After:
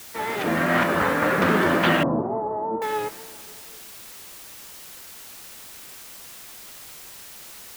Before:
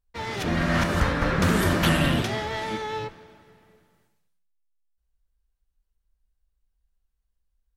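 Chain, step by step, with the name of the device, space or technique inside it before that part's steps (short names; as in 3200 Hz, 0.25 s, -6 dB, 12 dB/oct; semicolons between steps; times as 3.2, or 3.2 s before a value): wax cylinder (BPF 260–2400 Hz; wow and flutter; white noise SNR 16 dB); 2.03–2.82 elliptic low-pass 1000 Hz, stop band 80 dB; gain +5.5 dB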